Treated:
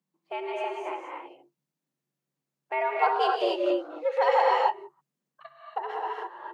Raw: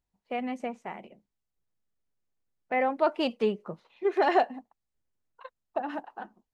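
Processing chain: gated-style reverb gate 300 ms rising, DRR -2 dB; frequency shift +140 Hz; trim -1.5 dB

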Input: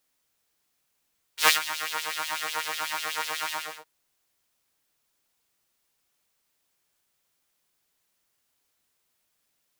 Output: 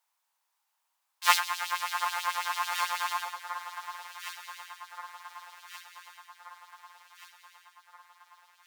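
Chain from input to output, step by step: tape speed +13%; resonant high-pass 920 Hz, resonance Q 4.5; echo whose repeats swap between lows and highs 739 ms, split 1.6 kHz, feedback 72%, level -8.5 dB; trim -5 dB

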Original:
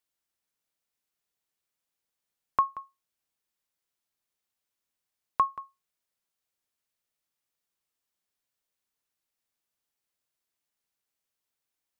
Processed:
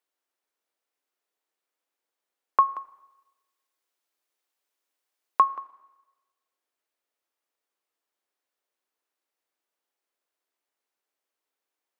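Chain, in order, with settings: high-pass 300 Hz 24 dB/octave; treble shelf 2.4 kHz -10 dB, from 2.59 s -4.5 dB, from 5.42 s -10.5 dB; Schroeder reverb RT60 1.1 s, combs from 33 ms, DRR 18.5 dB; trim +6 dB

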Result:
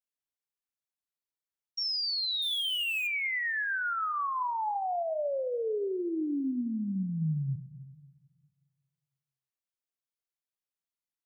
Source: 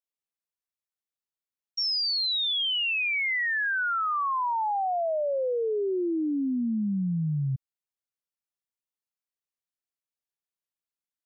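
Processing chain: 2.42–3.07 s: zero-crossing glitches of -34 dBFS; reverberation RT60 1.1 s, pre-delay 7 ms, DRR 12.5 dB; trim -4.5 dB

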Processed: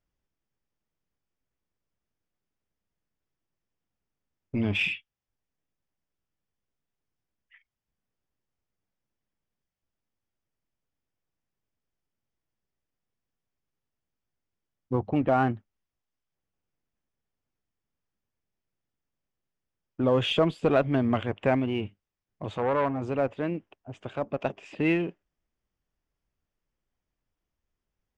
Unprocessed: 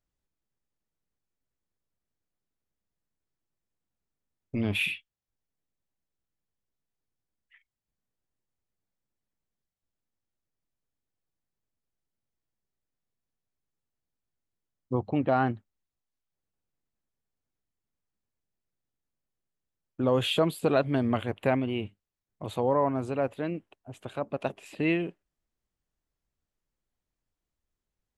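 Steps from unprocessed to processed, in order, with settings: low-pass 5.8 kHz 24 dB/octave; peaking EQ 4.1 kHz -12 dB 0.23 oct; in parallel at -9 dB: one-sided clip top -31.5 dBFS; 22.49–23.02 s: on the sum: transformer saturation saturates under 830 Hz

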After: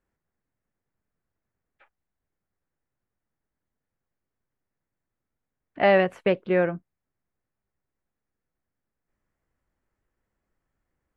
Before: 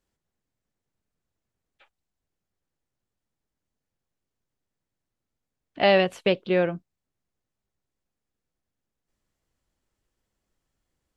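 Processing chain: resonant high shelf 2.6 kHz -10 dB, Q 1.5

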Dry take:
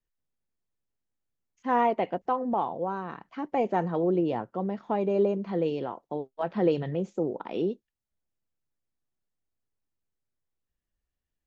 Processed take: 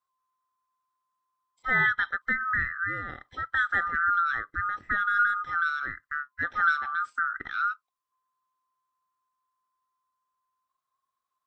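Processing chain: split-band scrambler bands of 1 kHz; 4.49–5.34 s: bass shelf 150 Hz +6.5 dB

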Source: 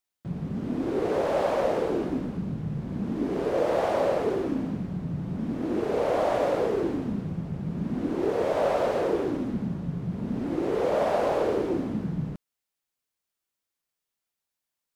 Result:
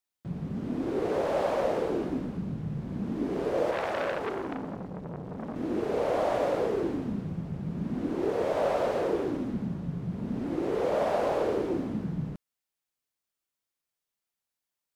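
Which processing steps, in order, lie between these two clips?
3.71–5.56 s: transformer saturation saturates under 1.6 kHz; trim -2.5 dB

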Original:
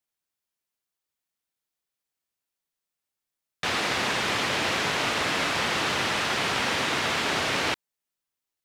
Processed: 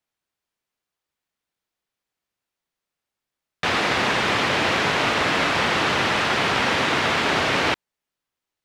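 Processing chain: treble shelf 5.5 kHz -11.5 dB; trim +6.5 dB

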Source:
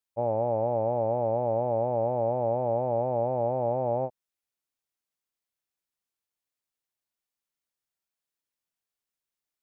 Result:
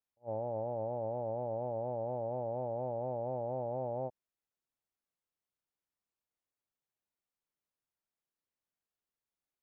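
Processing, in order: treble shelf 2 kHz -11.5 dB; peak limiter -28.5 dBFS, peak gain reduction 10.5 dB; attacks held to a fixed rise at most 440 dB/s

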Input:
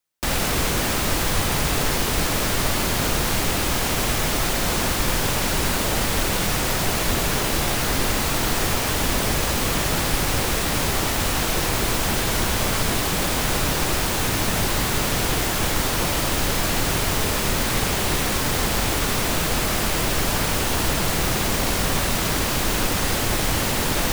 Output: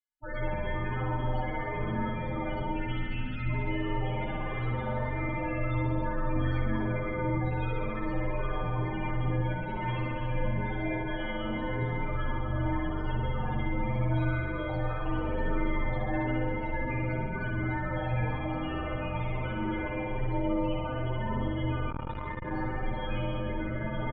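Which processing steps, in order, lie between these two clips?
2.73–3.44 s: spectral selection erased 600–1500 Hz; chord resonator G2 sus4, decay 0.37 s; loudest bins only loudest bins 16; on a send: feedback delay 275 ms, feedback 59%, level -11.5 dB; on the sum: spring tank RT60 1.7 s, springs 51 ms, chirp 20 ms, DRR -2.5 dB; mistuned SSB -270 Hz 220–3300 Hz; 21.90–22.51 s: transformer saturation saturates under 210 Hz; trim +8 dB

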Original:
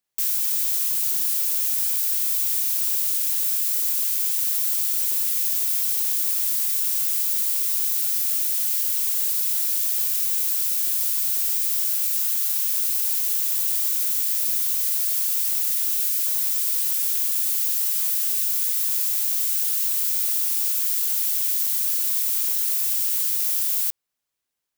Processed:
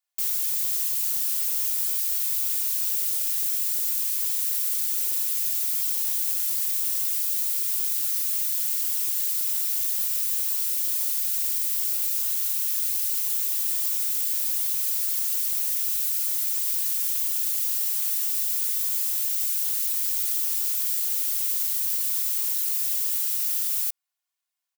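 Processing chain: high-pass 690 Hz 24 dB/octave; comb 2.8 ms, depth 70%; trim -4.5 dB

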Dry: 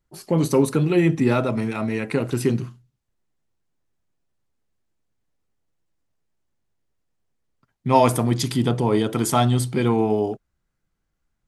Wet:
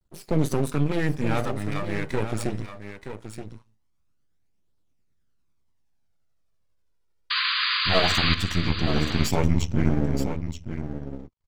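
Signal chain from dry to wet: pitch bend over the whole clip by -8.5 st starting unshifted; in parallel at +1 dB: peak limiter -13.5 dBFS, peak gain reduction 10 dB; on the sum: flange 0.21 Hz, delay 0.2 ms, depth 2 ms, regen +24%; half-wave rectifier; painted sound noise, 7.30–8.35 s, 1–4.9 kHz -22 dBFS; on a send: delay 925 ms -9.5 dB; on the sum: trim -2.5 dB

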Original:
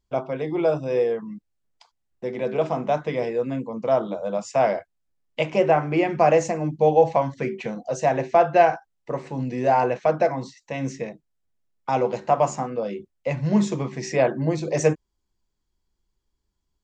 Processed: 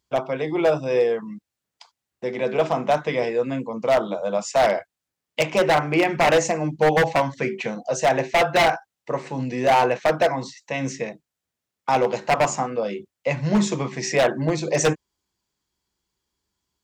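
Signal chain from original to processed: high-pass 82 Hz; tilt shelf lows -3.5 dB, about 750 Hz; wavefolder -14.5 dBFS; trim +3.5 dB

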